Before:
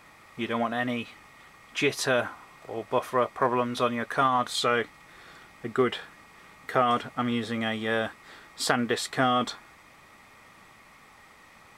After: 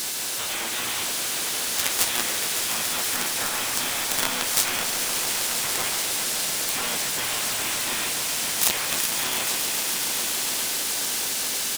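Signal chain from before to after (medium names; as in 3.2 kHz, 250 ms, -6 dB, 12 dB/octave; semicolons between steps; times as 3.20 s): spectral levelling over time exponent 0.6; in parallel at -1 dB: compression 5:1, threshold -30 dBFS, peak gain reduction 14 dB; on the sum: RIAA curve recording; spectral gate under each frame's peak -10 dB weak; companded quantiser 2-bit; tone controls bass -2 dB, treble +3 dB; on a send: echo with a slow build-up 140 ms, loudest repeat 5, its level -11 dB; on the sum: harmony voices -5 st -5 dB; endings held to a fixed fall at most 170 dB/s; trim -5.5 dB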